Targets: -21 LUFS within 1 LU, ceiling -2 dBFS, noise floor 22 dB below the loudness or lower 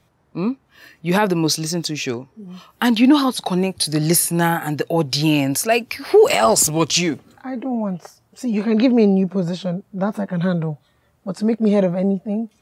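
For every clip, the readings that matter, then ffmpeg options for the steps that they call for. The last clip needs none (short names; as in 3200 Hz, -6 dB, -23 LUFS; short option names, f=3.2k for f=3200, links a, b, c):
loudness -18.5 LUFS; peak -4.0 dBFS; loudness target -21.0 LUFS
-> -af "volume=-2.5dB"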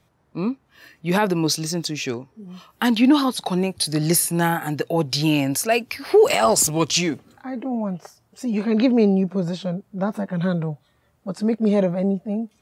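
loudness -21.0 LUFS; peak -6.5 dBFS; noise floor -63 dBFS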